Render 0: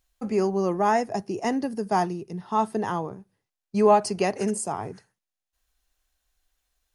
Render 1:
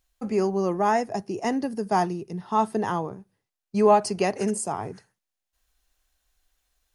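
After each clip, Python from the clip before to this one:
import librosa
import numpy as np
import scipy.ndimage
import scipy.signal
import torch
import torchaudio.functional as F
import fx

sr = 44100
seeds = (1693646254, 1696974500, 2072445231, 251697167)

y = fx.rider(x, sr, range_db=10, speed_s=2.0)
y = F.gain(torch.from_numpy(y), -1.5).numpy()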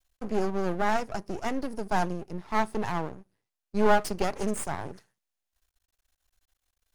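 y = np.maximum(x, 0.0)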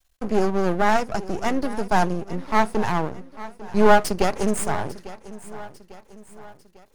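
y = fx.echo_feedback(x, sr, ms=848, feedback_pct=47, wet_db=-17.0)
y = F.gain(torch.from_numpy(y), 7.0).numpy()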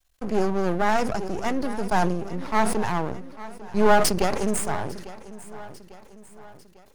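y = fx.sustainer(x, sr, db_per_s=49.0)
y = F.gain(torch.from_numpy(y), -3.0).numpy()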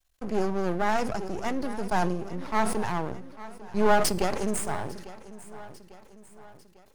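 y = fx.comb_fb(x, sr, f0_hz=120.0, decay_s=0.92, harmonics='odd', damping=0.0, mix_pct=50)
y = F.gain(torch.from_numpy(y), 2.0).numpy()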